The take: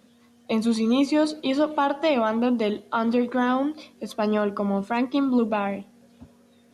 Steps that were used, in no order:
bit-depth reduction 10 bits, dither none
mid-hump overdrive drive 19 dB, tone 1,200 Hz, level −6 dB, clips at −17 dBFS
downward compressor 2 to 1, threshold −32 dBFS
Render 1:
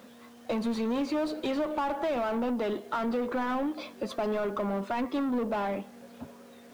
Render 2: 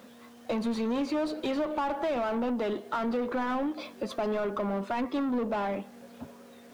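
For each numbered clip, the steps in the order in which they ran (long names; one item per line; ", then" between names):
mid-hump overdrive, then downward compressor, then bit-depth reduction
mid-hump overdrive, then bit-depth reduction, then downward compressor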